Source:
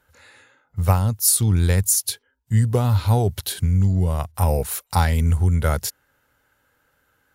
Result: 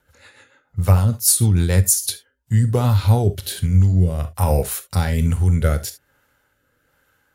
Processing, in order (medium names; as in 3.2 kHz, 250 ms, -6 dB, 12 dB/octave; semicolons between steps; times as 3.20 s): gated-style reverb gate 90 ms flat, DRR 9.5 dB; rotary cabinet horn 6.7 Hz, later 1.2 Hz, at 1.91 s; trim +3.5 dB